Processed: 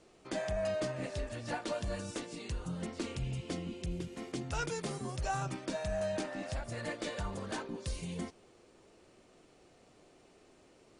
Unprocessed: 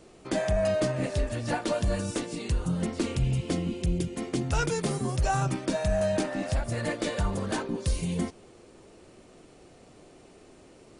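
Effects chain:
0:03.91–0:04.32: linear delta modulator 64 kbit/s, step −47.5 dBFS
low-pass filter 8,800 Hz 12 dB per octave
low-shelf EQ 430 Hz −5 dB
level −6.5 dB

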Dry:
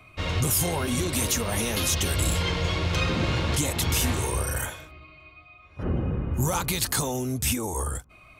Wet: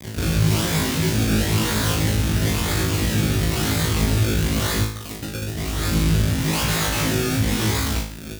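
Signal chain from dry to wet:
sample-and-hold swept by an LFO 30×, swing 100% 1 Hz
0:06.53–0:07.02: low shelf with overshoot 410 Hz −7 dB, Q 1.5
fuzz pedal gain 52 dB, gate −48 dBFS
high-pass filter 63 Hz
parametric band 710 Hz −14.5 dB 2.3 octaves
0:04.74–0:05.88: reverse
flutter between parallel walls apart 3.2 metres, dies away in 0.51 s
level −4.5 dB

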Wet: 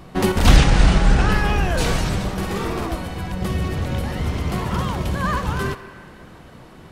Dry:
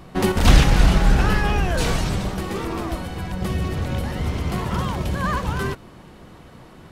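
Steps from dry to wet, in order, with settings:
0:00.56–0:01.32: linear-phase brick-wall low-pass 10,000 Hz
0:02.35–0:02.87: double-tracking delay 50 ms −3 dB
on a send: high-pass filter 480 Hz 24 dB per octave + convolution reverb RT60 2.5 s, pre-delay 5 ms, DRR 10.5 dB
on the sum: level +1 dB

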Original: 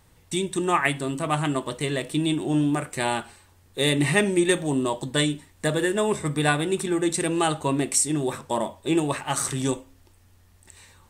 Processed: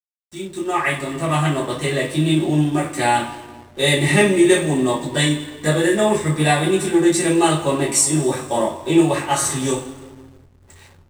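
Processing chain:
fade in at the beginning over 1.32 s
coupled-rooms reverb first 0.31 s, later 2.1 s, from −19 dB, DRR −8 dB
slack as between gear wheels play −36 dBFS
level −2 dB

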